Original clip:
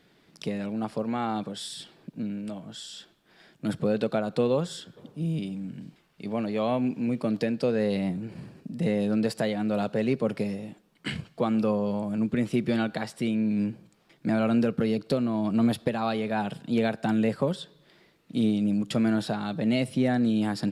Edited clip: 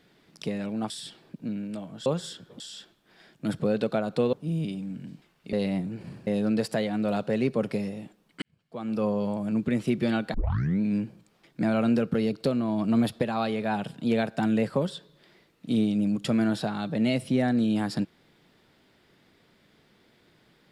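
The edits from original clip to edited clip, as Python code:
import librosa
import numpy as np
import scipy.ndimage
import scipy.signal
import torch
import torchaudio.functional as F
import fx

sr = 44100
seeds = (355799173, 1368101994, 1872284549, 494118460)

y = fx.edit(x, sr, fx.cut(start_s=0.9, length_s=0.74),
    fx.move(start_s=4.53, length_s=0.54, to_s=2.8),
    fx.cut(start_s=6.27, length_s=1.57),
    fx.cut(start_s=8.58, length_s=0.35),
    fx.fade_in_span(start_s=11.08, length_s=0.66, curve='qua'),
    fx.tape_start(start_s=13.0, length_s=0.47), tone=tone)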